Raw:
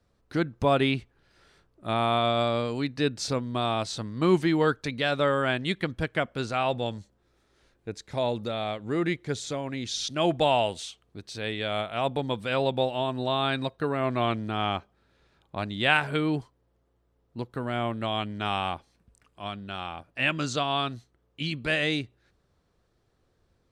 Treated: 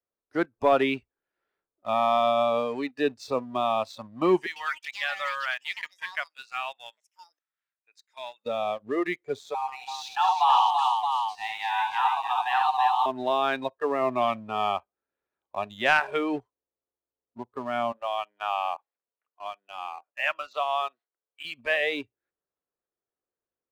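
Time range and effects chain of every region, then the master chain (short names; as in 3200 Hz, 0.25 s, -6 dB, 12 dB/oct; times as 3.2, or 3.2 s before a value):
4.46–8.46 HPF 1500 Hz + echoes that change speed 99 ms, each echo +6 st, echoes 2, each echo -6 dB
9.54–13.06 Chebyshev high-pass 490 Hz, order 6 + frequency shift +240 Hz + tapped delay 42/72/180/334/622 ms -17/-4.5/-18/-4.5/-6.5 dB
17.92–21.45 HPF 550 Hz + air absorption 160 m
whole clip: spectral noise reduction 18 dB; three-band isolator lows -18 dB, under 270 Hz, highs -16 dB, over 2700 Hz; sample leveller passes 1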